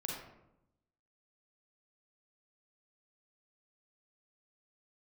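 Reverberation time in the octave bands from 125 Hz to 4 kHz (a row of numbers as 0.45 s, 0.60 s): 1.1 s, 1.1 s, 0.90 s, 0.80 s, 0.65 s, 0.45 s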